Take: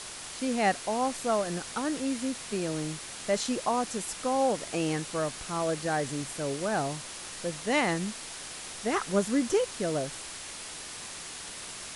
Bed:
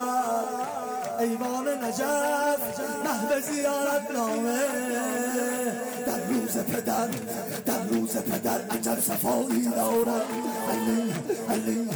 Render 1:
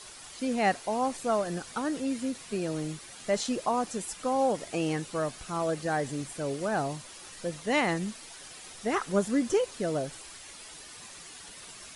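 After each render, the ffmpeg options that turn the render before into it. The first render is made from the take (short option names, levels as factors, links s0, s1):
-af "afftdn=nr=9:nf=-42"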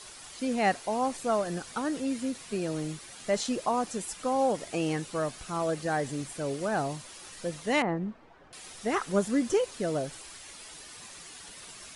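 -filter_complex "[0:a]asettb=1/sr,asplit=3[s0][s1][s2];[s0]atrim=end=7.824[s3];[s1]atrim=start=7.82:end=8.53,asetpts=PTS-STARTPTS,afade=t=in:d=0.004:c=qsin,afade=t=out:st=0.706:d=0.004:c=qsin,lowpass=1100[s4];[s2]atrim=start=8.526[s5];[s3][s4]acrossfade=d=0.004:c1=hsin:c2=qsin[s6];[s6][s5]acrossfade=d=0.004:c1=qsin:c2=hsin"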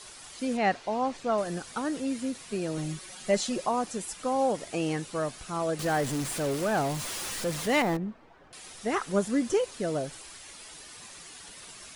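-filter_complex "[0:a]asettb=1/sr,asplit=3[s0][s1][s2];[s0]atrim=end=0.574[s3];[s1]atrim=start=0.57:end=1.38,asetpts=PTS-STARTPTS,afade=t=in:d=0.004:c=qsin,afade=t=out:st=0.806:d=0.004:c=qsin,lowpass=4900[s4];[s2]atrim=start=1.376[s5];[s3][s4]acrossfade=d=0.004:c1=hsin:c2=qsin[s6];[s6][s5]acrossfade=d=0.004:c1=qsin:c2=hsin,asettb=1/sr,asplit=3[s7][s8][s9];[s7]atrim=end=2.774[s10];[s8]atrim=start=2.77:end=3.67,asetpts=PTS-STARTPTS,afade=t=in:d=0.004:c=qsin,afade=t=out:st=0.896:d=0.004:c=qsin,aecho=1:1:5.4:0.7,atrim=end_sample=39690[s11];[s9]atrim=start=3.666[s12];[s10][s11]acrossfade=d=0.004:c1=hsin:c2=qsin[s13];[s13][s12]acrossfade=d=0.004:c1=qsin:c2=hsin,asettb=1/sr,asplit=3[s14][s15][s16];[s14]atrim=end=5.794[s17];[s15]atrim=start=5.79:end=7.97,asetpts=PTS-STARTPTS,afade=t=in:d=0.004:c=qsin,afade=t=out:st=2.176:d=0.004:c=qsin,aeval=exprs='val(0)+0.5*0.0266*sgn(val(0))':c=same[s18];[s16]atrim=start=7.966[s19];[s17][s18]acrossfade=d=0.004:c1=hsin:c2=qsin[s20];[s20][s19]acrossfade=d=0.004:c1=qsin:c2=hsin"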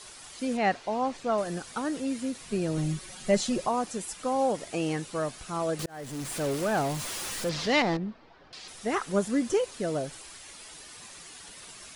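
-filter_complex "[0:a]asettb=1/sr,asplit=3[s0][s1][s2];[s0]atrim=end=2.424[s3];[s1]atrim=start=2.42:end=3.68,asetpts=PTS-STARTPTS,afade=t=in:d=0.004:c=qsin,afade=t=out:st=1.256:d=0.004:c=qsin,lowshelf=f=180:g=9.5[s4];[s2]atrim=start=3.676[s5];[s3][s4]acrossfade=d=0.004:c1=hsin:c2=qsin[s6];[s6][s5]acrossfade=d=0.004:c1=qsin:c2=hsin,asettb=1/sr,asplit=3[s7][s8][s9];[s7]atrim=end=7.494[s10];[s8]atrim=start=7.49:end=8.68,asetpts=PTS-STARTPTS,afade=t=in:d=0.004:c=qsin,afade=t=out:st=1.186:d=0.004:c=qsin,lowpass=f=4800:t=q:w=2.3[s11];[s9]atrim=start=8.676[s12];[s10][s11]acrossfade=d=0.004:c1=hsin:c2=qsin[s13];[s13][s12]acrossfade=d=0.004:c1=qsin:c2=hsin,asplit=2[s14][s15];[s14]atrim=end=5.86,asetpts=PTS-STARTPTS,afade=t=out:st=5.856:d=0.004:c=hsin[s16];[s15]atrim=start=5.86,asetpts=PTS-STARTPTS,afade=t=in:d=0.57[s17];[s16][s17]concat=n=2:v=0:a=1"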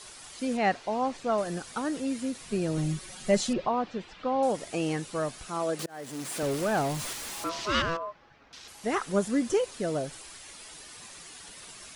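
-filter_complex "[0:a]asettb=1/sr,asplit=3[s0][s1][s2];[s0]atrim=end=3.534[s3];[s1]atrim=start=3.53:end=4.43,asetpts=PTS-STARTPTS,afade=t=in:d=0.004:c=qsin,afade=t=out:st=0.896:d=0.004:c=qsin,lowpass=f=3900:w=0.5412,lowpass=f=3900:w=1.3066[s4];[s2]atrim=start=4.426[s5];[s3][s4]acrossfade=d=0.004:c1=hsin:c2=qsin[s6];[s6][s5]acrossfade=d=0.004:c1=qsin:c2=hsin,asettb=1/sr,asplit=3[s7][s8][s9];[s7]atrim=end=5.484[s10];[s8]atrim=start=5.48:end=6.43,asetpts=PTS-STARTPTS,afade=t=in:d=0.004:c=qsin,afade=t=out:st=0.946:d=0.004:c=qsin,highpass=190[s11];[s9]atrim=start=6.426[s12];[s10][s11]acrossfade=d=0.004:c1=hsin:c2=qsin[s13];[s13][s12]acrossfade=d=0.004:c1=qsin:c2=hsin,asettb=1/sr,asplit=3[s14][s15][s16];[s14]atrim=end=7.134[s17];[s15]atrim=start=7.13:end=8.84,asetpts=PTS-STARTPTS,afade=t=in:d=0.004:c=qsin,afade=t=out:st=1.706:d=0.004:c=qsin,aeval=exprs='val(0)*sin(2*PI*830*n/s)':c=same[s18];[s16]atrim=start=8.836[s19];[s17][s18]acrossfade=d=0.004:c1=hsin:c2=qsin[s20];[s20][s19]acrossfade=d=0.004:c1=qsin:c2=hsin"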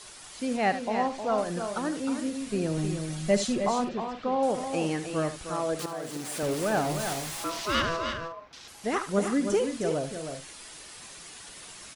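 -af "aecho=1:1:74|311|355:0.251|0.422|0.188"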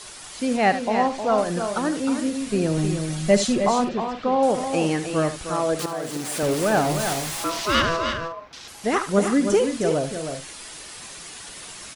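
-af "volume=2.11"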